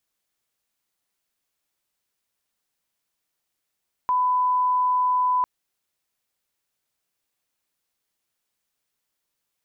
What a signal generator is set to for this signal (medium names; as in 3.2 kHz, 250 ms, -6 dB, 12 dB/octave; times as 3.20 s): line-up tone -18 dBFS 1.35 s